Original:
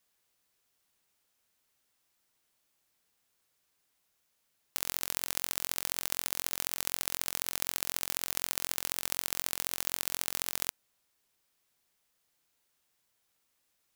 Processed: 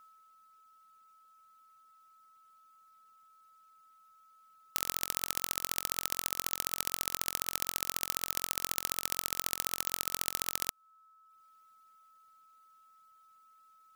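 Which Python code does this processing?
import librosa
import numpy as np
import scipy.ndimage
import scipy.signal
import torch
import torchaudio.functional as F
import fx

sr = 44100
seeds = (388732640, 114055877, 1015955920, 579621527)

y = x + 10.0 ** (-58.0 / 20.0) * np.sin(2.0 * np.pi * 1300.0 * np.arange(len(x)) / sr)
y = fx.dereverb_blind(y, sr, rt60_s=0.89)
y = y * 10.0 ** (1.5 / 20.0)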